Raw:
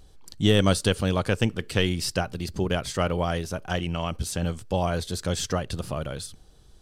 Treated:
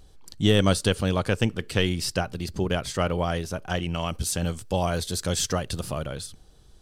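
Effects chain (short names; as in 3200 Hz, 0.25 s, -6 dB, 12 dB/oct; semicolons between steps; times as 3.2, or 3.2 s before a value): 3.94–6.02 high shelf 4600 Hz +7 dB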